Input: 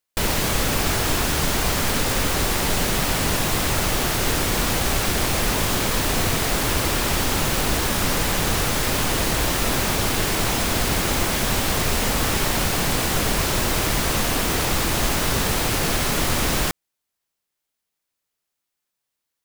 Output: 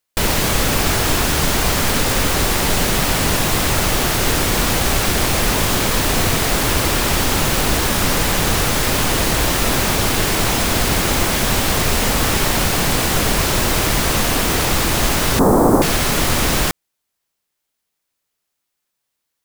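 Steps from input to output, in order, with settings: 15.39–15.82 s: FFT filter 110 Hz 0 dB, 250 Hz +13 dB, 1.1 kHz +7 dB, 2.7 kHz -27 dB, 8.4 kHz -5 dB; trim +4.5 dB

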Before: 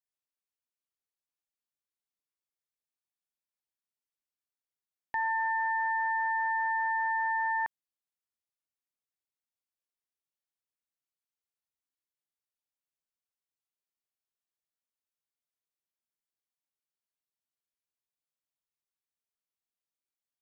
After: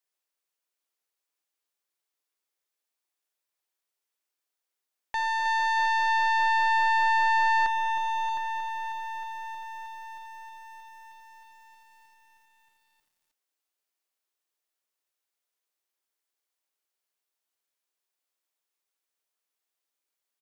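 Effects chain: high-pass 310 Hz 24 dB/octave; saturation -32.5 dBFS, distortion -10 dB; delay 711 ms -9.5 dB; bit-crushed delay 314 ms, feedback 80%, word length 11-bit, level -10.5 dB; trim +7.5 dB

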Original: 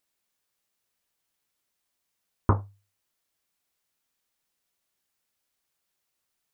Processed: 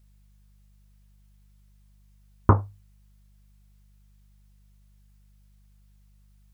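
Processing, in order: mains buzz 50 Hz, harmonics 4, -63 dBFS -8 dB/octave; trim +5 dB

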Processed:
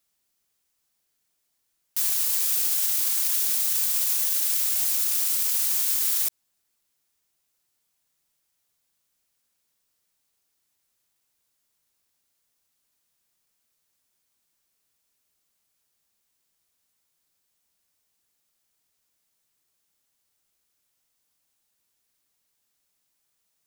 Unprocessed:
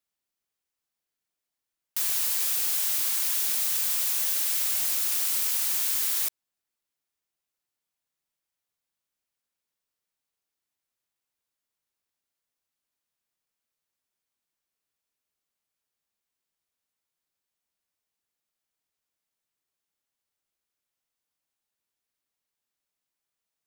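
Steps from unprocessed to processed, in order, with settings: tone controls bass +3 dB, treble +5 dB; peak limiter -22 dBFS, peak gain reduction 12.5 dB; trim +7.5 dB

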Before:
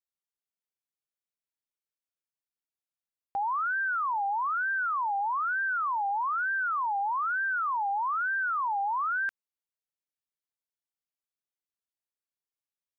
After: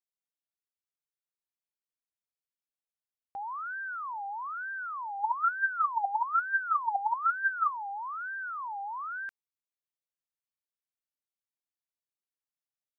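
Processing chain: 5.19–7.71 s: sweeping bell 5.5 Hz 260–1500 Hz +15 dB; trim -8 dB

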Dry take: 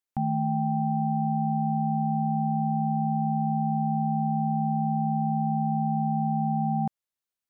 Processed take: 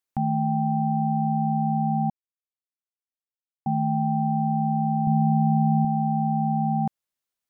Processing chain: 2.10–3.66 s: mute; 5.07–5.85 s: bass shelf 180 Hz +8.5 dB; trim +2.5 dB

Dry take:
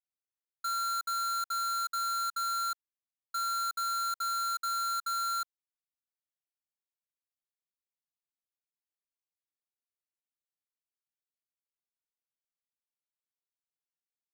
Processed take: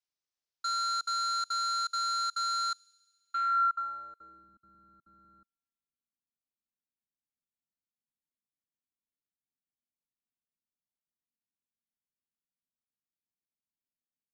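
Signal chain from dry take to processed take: low-pass sweep 5.5 kHz -> 240 Hz, 2.98–4.51 s; feedback echo behind a high-pass 68 ms, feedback 79%, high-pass 3.6 kHz, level -22 dB

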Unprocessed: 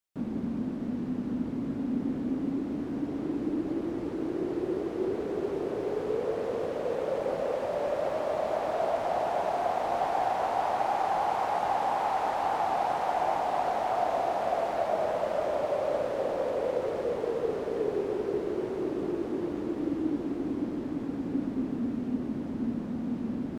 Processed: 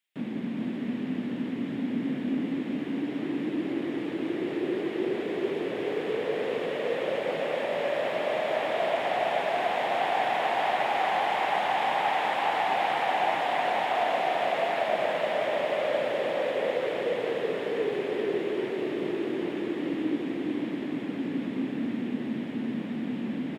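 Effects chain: high-pass 130 Hz 24 dB/octave; high-order bell 2.5 kHz +11.5 dB 1.3 oct; band-stop 6 kHz, Q 17; on a send: delay 426 ms -5 dB

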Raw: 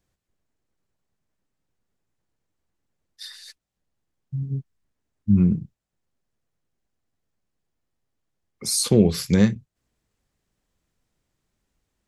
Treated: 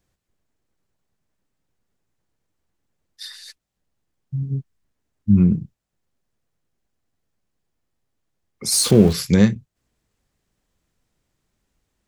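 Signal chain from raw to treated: 8.72–9.13 s: jump at every zero crossing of -28.5 dBFS; trim +3 dB

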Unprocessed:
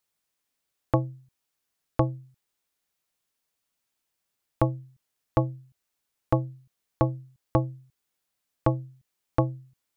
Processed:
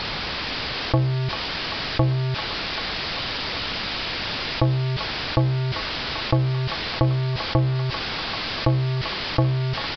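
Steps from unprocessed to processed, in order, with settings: jump at every zero crossing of -27.5 dBFS; bass shelf 190 Hz +5.5 dB; on a send: feedback echo behind a high-pass 392 ms, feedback 73%, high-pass 1.6 kHz, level -6 dB; on the sum: resampled via 11.025 kHz; level flattener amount 50%; trim -1.5 dB

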